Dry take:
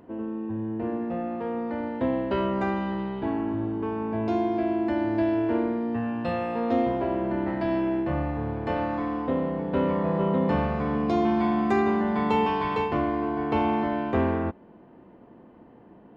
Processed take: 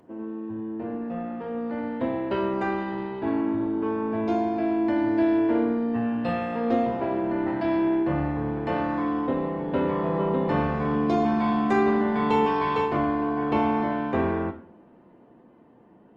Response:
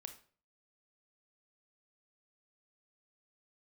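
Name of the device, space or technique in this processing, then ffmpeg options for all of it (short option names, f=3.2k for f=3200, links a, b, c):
far-field microphone of a smart speaker: -filter_complex "[1:a]atrim=start_sample=2205[a];[0:a][a]afir=irnorm=-1:irlink=0,highpass=100,dynaudnorm=f=210:g=17:m=4dB,volume=2.5dB" -ar 48000 -c:a libopus -b:a 20k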